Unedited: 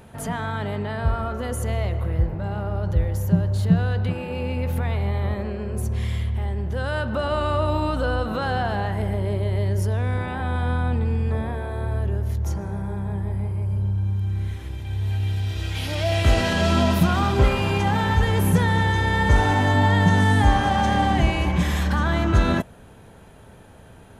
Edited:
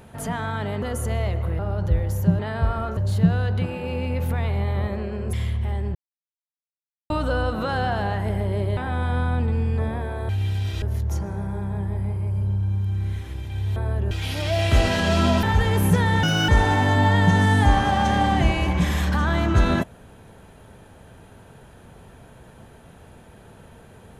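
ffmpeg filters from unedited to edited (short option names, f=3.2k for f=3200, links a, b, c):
-filter_complex "[0:a]asplit=16[a][b][c][d][e][f][g][h][i][j][k][l][m][n][o][p];[a]atrim=end=0.822[q];[b]atrim=start=1.398:end=2.172[r];[c]atrim=start=2.638:end=3.442[s];[d]atrim=start=0.818:end=1.402[t];[e]atrim=start=3.438:end=5.802[u];[f]atrim=start=6.058:end=6.68,asetpts=PTS-STARTPTS,afade=t=out:st=0.618:d=0.004:c=hsin[v];[g]atrim=start=6.68:end=7.83,asetpts=PTS-STARTPTS,volume=0[w];[h]atrim=start=7.83:end=9.502,asetpts=PTS-STARTPTS,afade=t=in:d=0.004:c=hsin[x];[i]atrim=start=10.298:end=11.822[y];[j]atrim=start=15.108:end=15.642[z];[k]atrim=start=12.168:end=15.112[aa];[l]atrim=start=11.818:end=12.172[ab];[m]atrim=start=15.638:end=16.962[ac];[n]atrim=start=18.048:end=18.854[ad];[o]atrim=start=18.85:end=19.27,asetpts=PTS-STARTPTS,asetrate=72765,aresample=44100,atrim=end_sample=11225,asetpts=PTS-STARTPTS[ae];[p]atrim=start=19.266[af];[q][r]acrossfade=d=0.004:c1=hsin:c2=hsin[ag];[ag][s]acrossfade=d=0.004:c1=hsin:c2=hsin[ah];[ah][t]acrossfade=d=0.004:c1=hsin:c2=hsin[ai];[ai][u]acrossfade=d=0.004:c1=hsin:c2=hsin[aj];[v][w][x]concat=n=3:v=0:a=1[ak];[aj][ak]acrossfade=d=0.004:c1=hsin:c2=hsin[al];[al][y]acrossfade=d=0.004:c1=hsin:c2=hsin[am];[am][z]acrossfade=d=0.004:c1=hsin:c2=hsin[an];[an][aa]acrossfade=d=0.004:c1=hsin:c2=hsin[ao];[ao][ab]acrossfade=d=0.004:c1=hsin:c2=hsin[ap];[ap][ac]acrossfade=d=0.004:c1=hsin:c2=hsin[aq];[aq][ad]acrossfade=d=0.004:c1=hsin:c2=hsin[ar];[ar][ae]acrossfade=d=0.004:c1=hsin:c2=hsin[as];[as][af]acrossfade=d=0.004:c1=hsin:c2=hsin"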